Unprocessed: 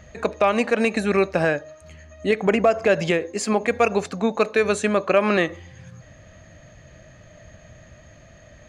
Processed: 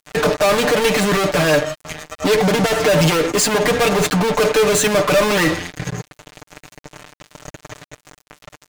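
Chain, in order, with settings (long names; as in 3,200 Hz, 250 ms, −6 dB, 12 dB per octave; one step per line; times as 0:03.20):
high-pass filter 46 Hz 12 dB per octave
in parallel at −1.5 dB: fake sidechain pumping 84 BPM, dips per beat 2, −21 dB, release 103 ms
on the sum: fuzz pedal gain 34 dB, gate −36 dBFS
comb filter 6.7 ms, depth 73%
dead-zone distortion −45.5 dBFS
level −2 dB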